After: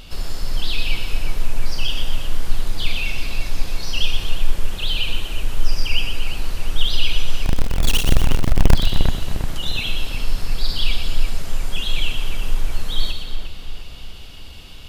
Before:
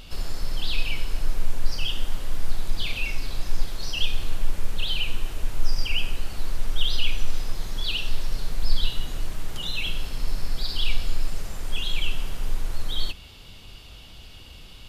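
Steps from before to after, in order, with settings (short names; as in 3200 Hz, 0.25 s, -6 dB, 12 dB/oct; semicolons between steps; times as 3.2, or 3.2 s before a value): 7.45–8.75 half-waves squared off; split-band echo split 2500 Hz, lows 0.353 s, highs 0.12 s, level -5.5 dB; gain +3.5 dB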